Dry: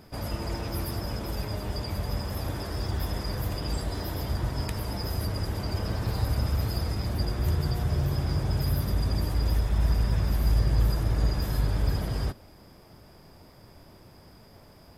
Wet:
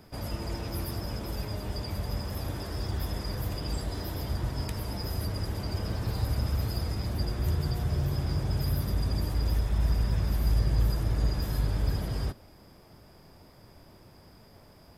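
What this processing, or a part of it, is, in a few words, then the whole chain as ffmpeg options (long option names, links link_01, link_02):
one-band saturation: -filter_complex "[0:a]acrossover=split=500|2400[link_01][link_02][link_03];[link_02]asoftclip=type=tanh:threshold=-38dB[link_04];[link_01][link_04][link_03]amix=inputs=3:normalize=0,volume=-2dB"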